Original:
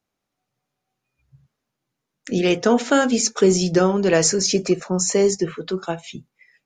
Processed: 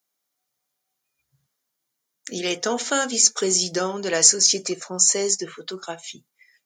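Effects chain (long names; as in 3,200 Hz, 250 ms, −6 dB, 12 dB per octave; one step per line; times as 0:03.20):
RIAA equalisation recording
notch filter 2,600 Hz, Q 10
level −4.5 dB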